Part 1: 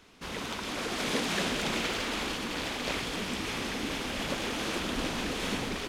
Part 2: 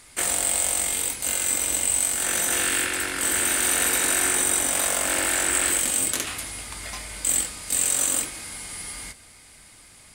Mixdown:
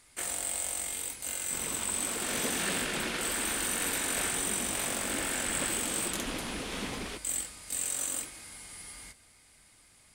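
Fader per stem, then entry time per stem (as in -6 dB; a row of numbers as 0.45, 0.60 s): -4.5, -10.5 dB; 1.30, 0.00 s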